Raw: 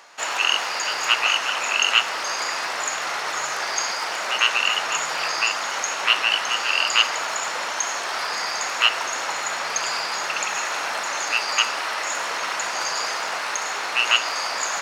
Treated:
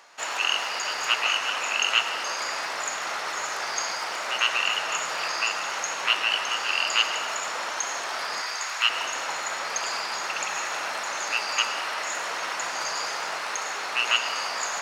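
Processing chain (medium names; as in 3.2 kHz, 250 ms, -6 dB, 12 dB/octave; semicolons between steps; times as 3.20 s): 8.41–8.90 s: high-pass 940 Hz 12 dB/octave; reverberation RT60 3.0 s, pre-delay 70 ms, DRR 8 dB; trim -4.5 dB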